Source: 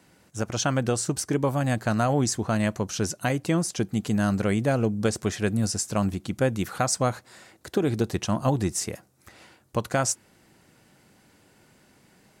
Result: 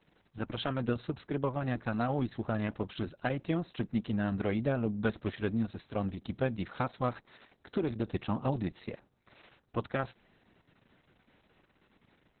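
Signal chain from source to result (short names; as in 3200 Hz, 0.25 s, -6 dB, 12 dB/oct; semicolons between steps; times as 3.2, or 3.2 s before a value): dynamic EQ 240 Hz, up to +5 dB, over -43 dBFS, Q 7.2; gain -7 dB; Opus 6 kbps 48000 Hz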